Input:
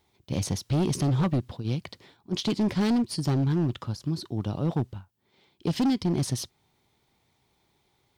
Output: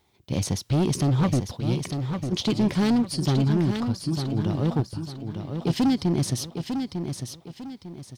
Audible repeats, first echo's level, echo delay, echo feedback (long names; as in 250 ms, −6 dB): 3, −7.0 dB, 900 ms, 34%